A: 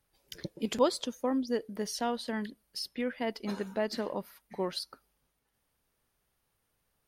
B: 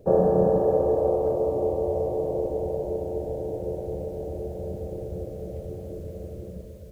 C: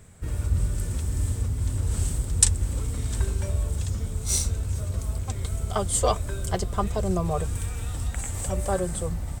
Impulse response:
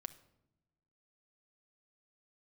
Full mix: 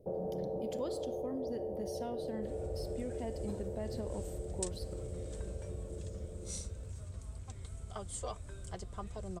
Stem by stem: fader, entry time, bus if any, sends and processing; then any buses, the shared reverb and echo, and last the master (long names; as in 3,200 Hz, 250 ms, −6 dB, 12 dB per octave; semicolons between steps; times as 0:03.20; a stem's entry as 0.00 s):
−4.5 dB, 0.00 s, bus A, send −4.5 dB, high-shelf EQ 7,900 Hz +8 dB
−10.5 dB, 0.00 s, bus A, send −7 dB, no processing
−16.0 dB, 2.20 s, no bus, no send, low-pass filter 10,000 Hz 24 dB per octave
bus A: 0.0 dB, Chebyshev low-pass filter 740 Hz, order 2; brickwall limiter −30.5 dBFS, peak gain reduction 11.5 dB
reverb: on, pre-delay 6 ms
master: downward compressor 1.5 to 1, threshold −40 dBFS, peak gain reduction 5 dB